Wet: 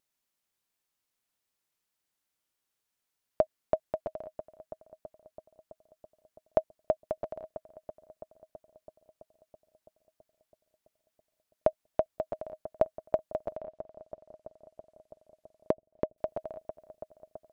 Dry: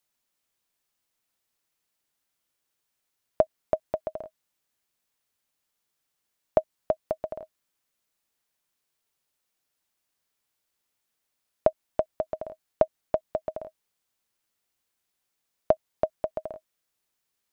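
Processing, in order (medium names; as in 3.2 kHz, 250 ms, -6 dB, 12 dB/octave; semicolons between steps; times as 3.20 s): filtered feedback delay 330 ms, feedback 77%, low-pass 2 kHz, level -15 dB; 13.53–16.18 s: low-pass that closes with the level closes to 500 Hz, closed at -27.5 dBFS; vibrato 1.1 Hz 11 cents; trim -4 dB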